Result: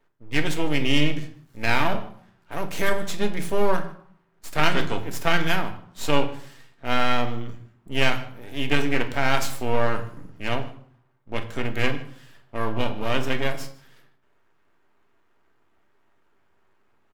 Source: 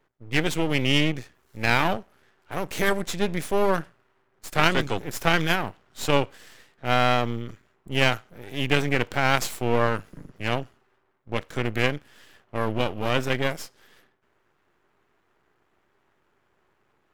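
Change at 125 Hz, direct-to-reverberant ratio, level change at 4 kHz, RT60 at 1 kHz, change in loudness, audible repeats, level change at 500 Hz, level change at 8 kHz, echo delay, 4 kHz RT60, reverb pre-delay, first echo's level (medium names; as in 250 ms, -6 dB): -1.5 dB, 5.0 dB, -1.0 dB, 0.60 s, -1.0 dB, 1, -1.0 dB, -1.5 dB, 152 ms, 0.45 s, 3 ms, -22.5 dB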